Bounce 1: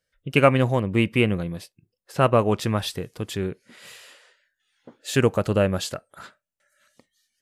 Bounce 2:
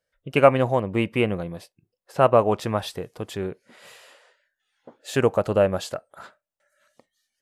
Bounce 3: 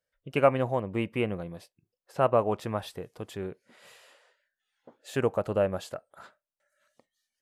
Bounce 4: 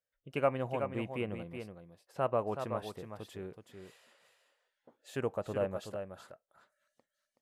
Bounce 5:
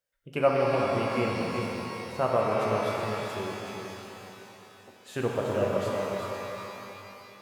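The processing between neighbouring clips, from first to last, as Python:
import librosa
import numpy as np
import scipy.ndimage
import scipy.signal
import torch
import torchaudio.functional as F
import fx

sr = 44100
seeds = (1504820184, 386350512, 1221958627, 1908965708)

y1 = fx.peak_eq(x, sr, hz=720.0, db=9.5, octaves=1.7)
y1 = F.gain(torch.from_numpy(y1), -5.0).numpy()
y2 = fx.dynamic_eq(y1, sr, hz=5300.0, q=0.8, threshold_db=-43.0, ratio=4.0, max_db=-4)
y2 = F.gain(torch.from_numpy(y2), -6.5).numpy()
y3 = y2 + 10.0 ** (-7.5 / 20.0) * np.pad(y2, (int(375 * sr / 1000.0), 0))[:len(y2)]
y3 = F.gain(torch.from_numpy(y3), -8.0).numpy()
y4 = fx.rev_shimmer(y3, sr, seeds[0], rt60_s=3.4, semitones=12, shimmer_db=-8, drr_db=-2.0)
y4 = F.gain(torch.from_numpy(y4), 4.0).numpy()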